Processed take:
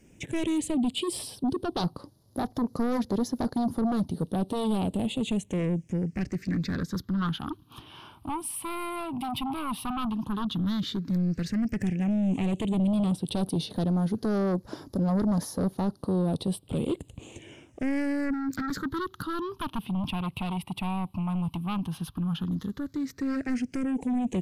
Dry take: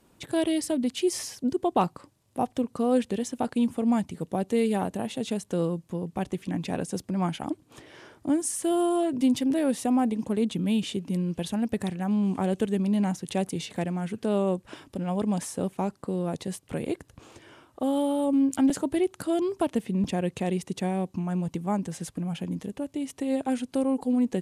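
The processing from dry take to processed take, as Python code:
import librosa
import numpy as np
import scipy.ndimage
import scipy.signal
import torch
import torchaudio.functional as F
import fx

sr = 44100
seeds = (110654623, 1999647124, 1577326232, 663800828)

p1 = fx.dynamic_eq(x, sr, hz=7600.0, q=0.98, threshold_db=-53.0, ratio=4.0, max_db=-6)
p2 = fx.fold_sine(p1, sr, drive_db=14, ceiling_db=-11.5)
p3 = p1 + (p2 * 10.0 ** (-6.5 / 20.0))
p4 = fx.phaser_stages(p3, sr, stages=6, low_hz=450.0, high_hz=2500.0, hz=0.084, feedback_pct=35)
y = p4 * 10.0 ** (-8.0 / 20.0)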